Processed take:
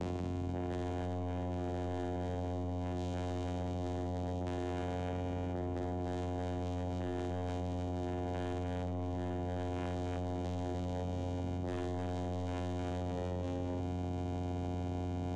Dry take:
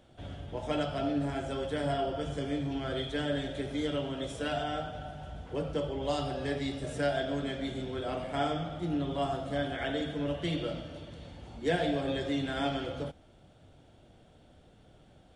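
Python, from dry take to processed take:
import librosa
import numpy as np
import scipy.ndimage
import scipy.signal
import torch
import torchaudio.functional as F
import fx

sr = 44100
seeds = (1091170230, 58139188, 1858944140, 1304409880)

p1 = fx.ellip_bandstop(x, sr, low_hz=700.0, high_hz=4000.0, order=3, stop_db=40, at=(4.03, 4.45), fade=0.02)
p2 = fx.vocoder(p1, sr, bands=4, carrier='saw', carrier_hz=89.5)
p3 = 10.0 ** (-29.5 / 20.0) * np.tanh(p2 / 10.0 ** (-29.5 / 20.0))
p4 = fx.doubler(p3, sr, ms=45.0, db=-13.5)
p5 = p4 + fx.echo_multitap(p4, sr, ms=(53, 109, 303, 536, 685), db=(-4.5, -16.5, -3.0, -18.5, -17.0), dry=0)
p6 = fx.env_flatten(p5, sr, amount_pct=100)
y = p6 * 10.0 ** (-7.5 / 20.0)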